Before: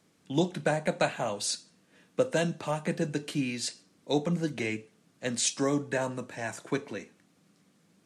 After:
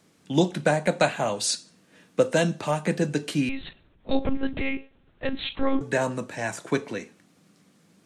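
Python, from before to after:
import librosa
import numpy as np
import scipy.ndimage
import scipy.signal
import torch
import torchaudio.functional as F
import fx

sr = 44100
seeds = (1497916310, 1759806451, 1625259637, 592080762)

y = fx.lpc_monotone(x, sr, seeds[0], pitch_hz=270.0, order=8, at=(3.49, 5.81))
y = y * librosa.db_to_amplitude(5.5)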